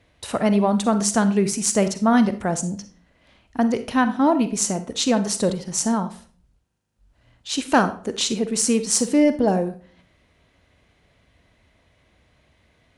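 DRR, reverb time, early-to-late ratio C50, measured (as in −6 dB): 10.0 dB, 0.45 s, 12.5 dB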